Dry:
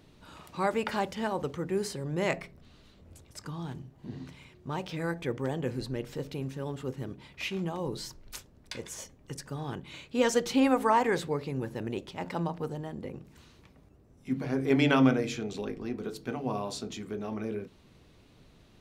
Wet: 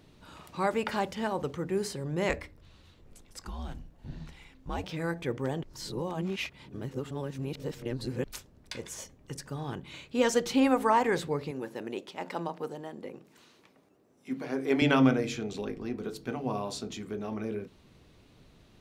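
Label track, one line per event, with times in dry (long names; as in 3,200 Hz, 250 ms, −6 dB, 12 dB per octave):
2.290000	4.840000	frequency shifter −100 Hz
5.630000	8.240000	reverse
11.510000	14.820000	high-pass filter 270 Hz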